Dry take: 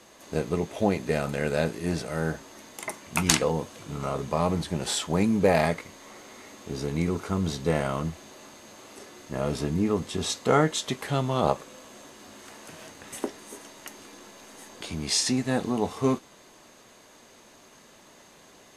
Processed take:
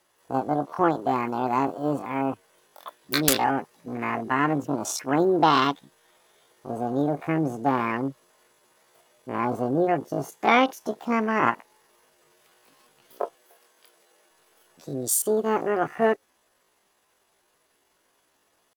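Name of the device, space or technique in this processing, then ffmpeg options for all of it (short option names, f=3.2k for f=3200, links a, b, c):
chipmunk voice: -filter_complex "[0:a]afwtdn=0.0282,asetrate=74167,aresample=44100,atempo=0.594604,asettb=1/sr,asplit=3[a][b][c];[a]atrim=end=13.354[d];[b]atrim=start=13.35:end=14.31,asetpts=PTS-STARTPTS,afade=t=in:d=0.004:c=qsin,afade=t=out:st=0.956:d=0.004:c=qsin,highpass=190[e];[c]atrim=start=14.306[f];[d][e]acrossfade=d=0.004:c1=hsin:c2=qsin[g];[g][f]acrossfade=d=0.004:c1=qsin:c2=hsin,volume=2.5dB"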